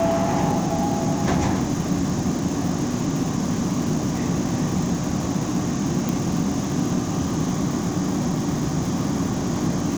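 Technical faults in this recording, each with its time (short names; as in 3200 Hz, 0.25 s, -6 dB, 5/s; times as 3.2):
crackle 410/s -30 dBFS
6.09 pop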